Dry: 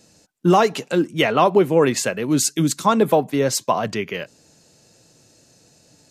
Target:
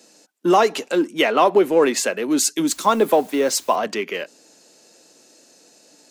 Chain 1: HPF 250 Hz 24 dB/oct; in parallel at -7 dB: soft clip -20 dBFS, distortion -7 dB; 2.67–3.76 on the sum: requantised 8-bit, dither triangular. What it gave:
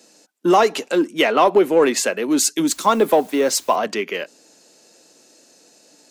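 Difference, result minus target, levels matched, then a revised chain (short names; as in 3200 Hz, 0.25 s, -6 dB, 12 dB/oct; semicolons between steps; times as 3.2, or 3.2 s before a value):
soft clip: distortion -5 dB
HPF 250 Hz 24 dB/oct; in parallel at -7 dB: soft clip -31 dBFS, distortion -2 dB; 2.67–3.76 on the sum: requantised 8-bit, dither triangular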